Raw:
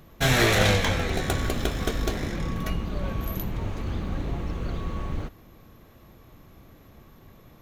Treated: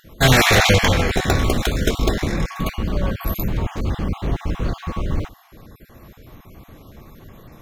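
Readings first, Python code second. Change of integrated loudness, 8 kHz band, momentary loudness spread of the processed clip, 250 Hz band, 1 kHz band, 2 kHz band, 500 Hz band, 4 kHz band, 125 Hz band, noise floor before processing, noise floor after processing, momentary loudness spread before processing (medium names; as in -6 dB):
+7.0 dB, +7.5 dB, 13 LU, +7.0 dB, +8.0 dB, +7.5 dB, +6.5 dB, +7.5 dB, +7.0 dB, -52 dBFS, -48 dBFS, 13 LU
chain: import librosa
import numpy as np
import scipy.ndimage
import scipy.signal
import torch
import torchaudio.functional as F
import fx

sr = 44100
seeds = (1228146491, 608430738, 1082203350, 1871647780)

y = fx.spec_dropout(x, sr, seeds[0], share_pct=25)
y = F.gain(torch.from_numpy(y), 8.5).numpy()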